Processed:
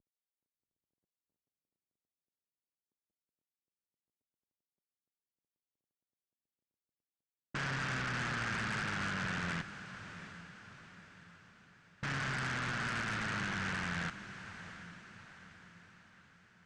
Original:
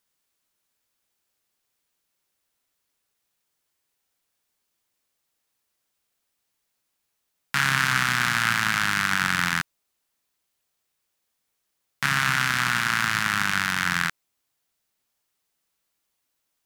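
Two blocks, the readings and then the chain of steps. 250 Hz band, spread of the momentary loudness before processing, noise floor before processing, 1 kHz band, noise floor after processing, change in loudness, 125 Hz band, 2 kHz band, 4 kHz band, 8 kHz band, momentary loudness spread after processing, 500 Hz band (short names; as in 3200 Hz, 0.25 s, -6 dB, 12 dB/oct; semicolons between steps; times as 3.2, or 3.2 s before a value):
-7.0 dB, 6 LU, -78 dBFS, -14.0 dB, under -85 dBFS, -14.5 dB, -7.0 dB, -14.0 dB, -15.5 dB, -17.5 dB, 19 LU, -2.0 dB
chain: CVSD 16 kbps; low-pass opened by the level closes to 320 Hz, open at -31 dBFS; limiter -28.5 dBFS, peak gain reduction 10 dB; added harmonics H 5 -12 dB, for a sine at -28.5 dBFS; on a send: diffused feedback echo 0.736 s, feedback 49%, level -12 dB; on the sum: gain -1.5 dB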